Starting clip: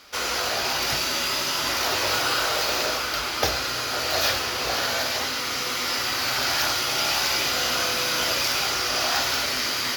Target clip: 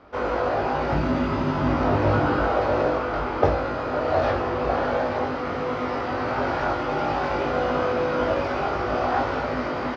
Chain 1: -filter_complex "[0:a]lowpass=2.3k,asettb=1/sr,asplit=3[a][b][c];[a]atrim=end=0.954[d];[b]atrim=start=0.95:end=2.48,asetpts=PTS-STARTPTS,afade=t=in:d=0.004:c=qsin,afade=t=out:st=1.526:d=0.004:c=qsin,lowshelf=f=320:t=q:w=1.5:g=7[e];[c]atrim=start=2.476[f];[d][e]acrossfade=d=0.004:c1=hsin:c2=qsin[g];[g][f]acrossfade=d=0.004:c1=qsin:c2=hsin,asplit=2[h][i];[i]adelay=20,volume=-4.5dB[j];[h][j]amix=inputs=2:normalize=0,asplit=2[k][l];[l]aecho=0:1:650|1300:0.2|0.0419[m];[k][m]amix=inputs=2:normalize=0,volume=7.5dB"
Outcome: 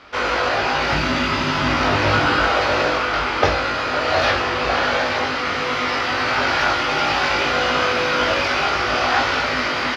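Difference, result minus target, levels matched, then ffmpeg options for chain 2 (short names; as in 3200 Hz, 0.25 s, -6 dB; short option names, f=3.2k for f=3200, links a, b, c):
2000 Hz band +6.5 dB
-filter_complex "[0:a]lowpass=810,asettb=1/sr,asplit=3[a][b][c];[a]atrim=end=0.954[d];[b]atrim=start=0.95:end=2.48,asetpts=PTS-STARTPTS,afade=t=in:d=0.004:c=qsin,afade=t=out:st=1.526:d=0.004:c=qsin,lowshelf=f=320:t=q:w=1.5:g=7[e];[c]atrim=start=2.476[f];[d][e]acrossfade=d=0.004:c1=hsin:c2=qsin[g];[g][f]acrossfade=d=0.004:c1=qsin:c2=hsin,asplit=2[h][i];[i]adelay=20,volume=-4.5dB[j];[h][j]amix=inputs=2:normalize=0,asplit=2[k][l];[l]aecho=0:1:650|1300:0.2|0.0419[m];[k][m]amix=inputs=2:normalize=0,volume=7.5dB"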